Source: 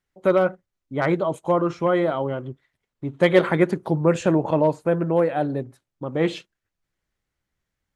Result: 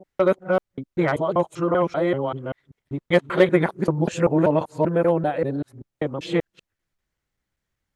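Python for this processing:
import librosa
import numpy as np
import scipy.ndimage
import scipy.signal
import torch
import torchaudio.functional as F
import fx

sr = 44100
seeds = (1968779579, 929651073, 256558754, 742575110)

y = fx.local_reverse(x, sr, ms=194.0)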